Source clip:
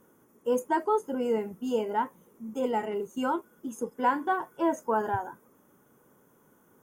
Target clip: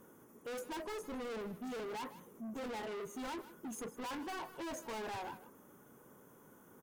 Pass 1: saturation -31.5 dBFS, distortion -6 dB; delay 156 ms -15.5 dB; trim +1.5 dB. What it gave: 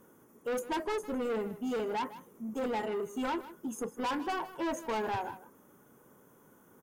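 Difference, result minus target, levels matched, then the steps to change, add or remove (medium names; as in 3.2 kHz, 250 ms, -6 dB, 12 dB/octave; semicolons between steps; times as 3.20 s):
saturation: distortion -4 dB
change: saturation -42.5 dBFS, distortion -2 dB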